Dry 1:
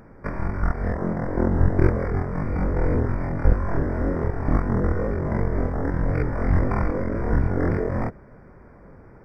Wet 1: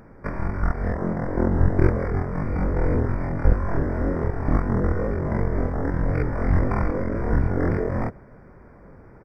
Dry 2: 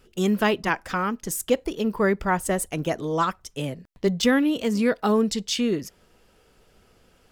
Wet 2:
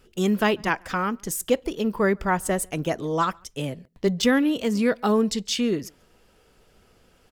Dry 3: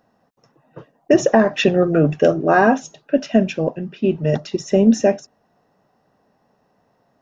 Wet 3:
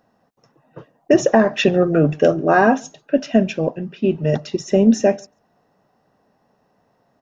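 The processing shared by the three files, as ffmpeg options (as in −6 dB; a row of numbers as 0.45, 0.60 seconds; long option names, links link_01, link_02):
-filter_complex "[0:a]asplit=2[link_01][link_02];[link_02]adelay=139.9,volume=-30dB,highshelf=frequency=4000:gain=-3.15[link_03];[link_01][link_03]amix=inputs=2:normalize=0"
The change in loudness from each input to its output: 0.0, 0.0, 0.0 LU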